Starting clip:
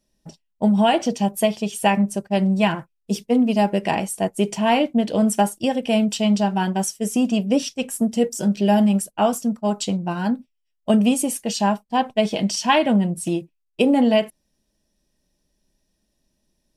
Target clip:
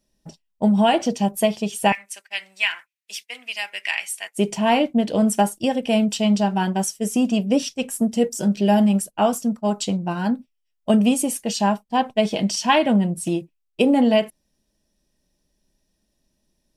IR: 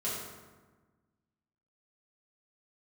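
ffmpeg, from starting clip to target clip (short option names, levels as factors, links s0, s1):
-filter_complex "[0:a]asettb=1/sr,asplit=3[s0][s1][s2];[s0]atrim=end=1.924[s3];[s1]atrim=start=1.92:end=4.38,asetpts=PTS-STARTPTS,afade=t=in:d=0.004:c=qsin,afade=t=out:st=2.456:d=0.004:c=qsin,highpass=f=2100:t=q:w=2.5[s4];[s2]atrim=start=4.376[s5];[s3][s4]acrossfade=d=0.004:c1=hsin:c2=qsin[s6];[s6][s5]acrossfade=d=0.004:c1=qsin:c2=hsin"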